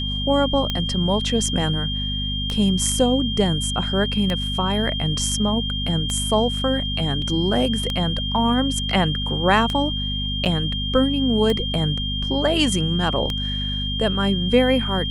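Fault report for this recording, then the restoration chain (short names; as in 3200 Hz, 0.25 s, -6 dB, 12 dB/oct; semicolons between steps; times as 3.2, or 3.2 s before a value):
hum 50 Hz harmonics 5 -27 dBFS
tick 33 1/3 rpm -10 dBFS
tone 3200 Hz -26 dBFS
7.22 gap 2.4 ms
10.45–10.46 gap 8.1 ms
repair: de-click; de-hum 50 Hz, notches 5; notch 3200 Hz, Q 30; interpolate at 7.22, 2.4 ms; interpolate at 10.45, 8.1 ms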